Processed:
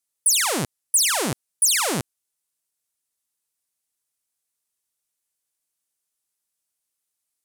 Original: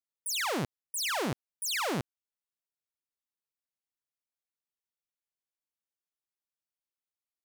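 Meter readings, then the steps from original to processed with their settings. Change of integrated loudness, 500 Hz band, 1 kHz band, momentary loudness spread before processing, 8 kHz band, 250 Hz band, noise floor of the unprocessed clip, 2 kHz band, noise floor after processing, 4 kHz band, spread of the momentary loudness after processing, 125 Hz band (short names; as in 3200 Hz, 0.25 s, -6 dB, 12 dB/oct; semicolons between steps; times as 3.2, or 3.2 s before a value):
+12.0 dB, +6.0 dB, +6.5 dB, 6 LU, +17.0 dB, +6.0 dB, under -85 dBFS, +7.0 dB, -81 dBFS, +10.0 dB, 10 LU, +6.0 dB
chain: bell 9500 Hz +13.5 dB 1.4 oct; gain +6 dB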